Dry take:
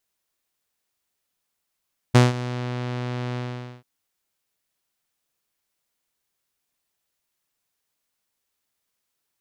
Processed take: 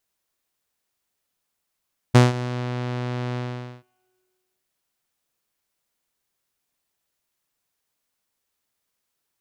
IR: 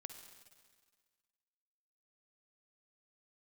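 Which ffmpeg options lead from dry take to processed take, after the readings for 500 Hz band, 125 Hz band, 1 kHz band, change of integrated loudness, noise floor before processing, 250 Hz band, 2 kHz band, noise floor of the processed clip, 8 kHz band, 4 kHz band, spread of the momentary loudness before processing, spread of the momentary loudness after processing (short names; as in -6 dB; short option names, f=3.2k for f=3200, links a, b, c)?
+1.5 dB, +1.0 dB, +1.0 dB, +1.0 dB, -79 dBFS, +1.0 dB, +0.5 dB, -79 dBFS, 0.0 dB, -0.5 dB, 16 LU, 16 LU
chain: -filter_complex "[0:a]asplit=2[a][b];[1:a]atrim=start_sample=2205,lowpass=2.1k[c];[b][c]afir=irnorm=-1:irlink=0,volume=-9.5dB[d];[a][d]amix=inputs=2:normalize=0"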